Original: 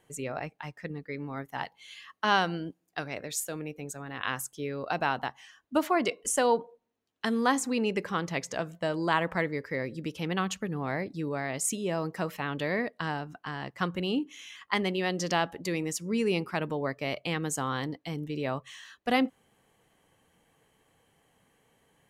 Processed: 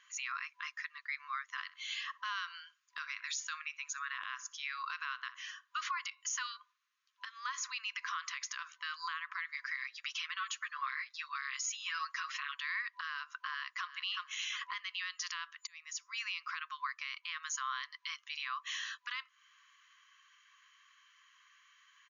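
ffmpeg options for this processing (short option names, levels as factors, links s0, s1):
-filter_complex "[0:a]asplit=3[s0][s1][s2];[s0]afade=t=out:st=1.63:d=0.02[s3];[s1]asplit=2[s4][s5];[s5]adelay=62,lowpass=f=2000:p=1,volume=0.126,asplit=2[s6][s7];[s7]adelay=62,lowpass=f=2000:p=1,volume=0.3,asplit=2[s8][s9];[s9]adelay=62,lowpass=f=2000:p=1,volume=0.3[s10];[s4][s6][s8][s10]amix=inputs=4:normalize=0,afade=t=in:st=1.63:d=0.02,afade=t=out:st=5.81:d=0.02[s11];[s2]afade=t=in:st=5.81:d=0.02[s12];[s3][s11][s12]amix=inputs=3:normalize=0,asettb=1/sr,asplit=3[s13][s14][s15];[s13]atrim=end=7.254[s16];[s14]atrim=start=7.25:end=8.82,asetpts=PTS-STARTPTS,afade=t=in:d=0.004:c=qsin,afade=t=out:st=1.566:d=0.004:c=qsin,acompressor=threshold=0.0251:ratio=6:attack=3.2:release=140:knee=1:detection=peak[s17];[s15]atrim=start=8.816[s18];[s16][s17]acrossfade=d=0.004:c1=hsin:c2=qsin[s19];[s19][s18]acrossfade=d=0.004:c1=qsin:c2=hsin,asettb=1/sr,asplit=3[s20][s21][s22];[s20]atrim=end=9.544[s23];[s21]atrim=start=9.54:end=12.55,asetpts=PTS-STARTPTS,afade=t=in:d=0.004:c=qsin,afade=t=out:st=3.006:d=0.004:c=qsin,aecho=1:1:7.4:0.69,atrim=end_sample=132741[s24];[s22]atrim=start=12.546[s25];[s23][s24]acrossfade=d=0.004:c1=hsin:c2=qsin[s26];[s26][s25]acrossfade=d=0.004:c1=qsin:c2=hsin,asplit=2[s27][s28];[s28]afade=t=in:st=13.49:d=0.01,afade=t=out:st=14.08:d=0.01,aecho=0:1:360|720:0.298538|0.0447807[s29];[s27][s29]amix=inputs=2:normalize=0,asplit=2[s30][s31];[s30]atrim=end=15.67,asetpts=PTS-STARTPTS,afade=t=out:st=15.666:d=0.004:c=hsin[s32];[s31]atrim=start=15.67,asetpts=PTS-STARTPTS,afade=t=in:d=0.92[s33];[s32][s33]concat=n=2:v=0:a=1,afftfilt=real='re*between(b*sr/4096,1000,7000)':imag='im*between(b*sr/4096,1000,7000)':win_size=4096:overlap=0.75,acompressor=threshold=0.01:ratio=12,alimiter=level_in=3.76:limit=0.0631:level=0:latency=1:release=29,volume=0.266,volume=2.37"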